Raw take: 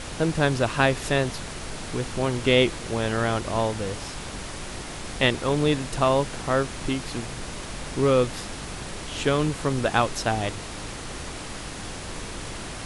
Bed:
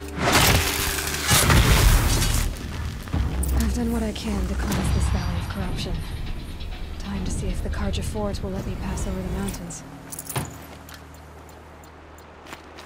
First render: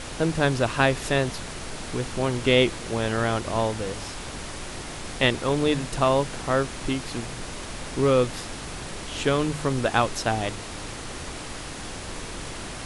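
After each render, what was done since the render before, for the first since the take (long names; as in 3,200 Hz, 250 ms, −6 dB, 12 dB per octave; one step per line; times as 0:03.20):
hum removal 50 Hz, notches 4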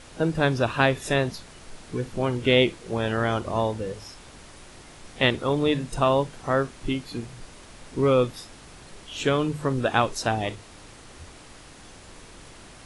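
noise reduction from a noise print 11 dB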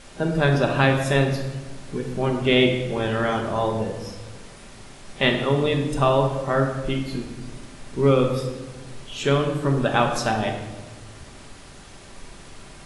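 rectangular room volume 880 cubic metres, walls mixed, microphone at 1.2 metres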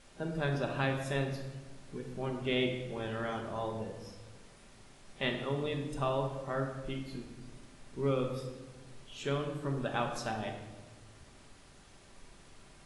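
level −13.5 dB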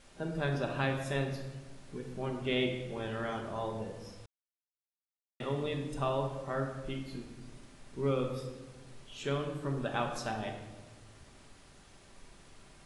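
0:04.26–0:05.40: silence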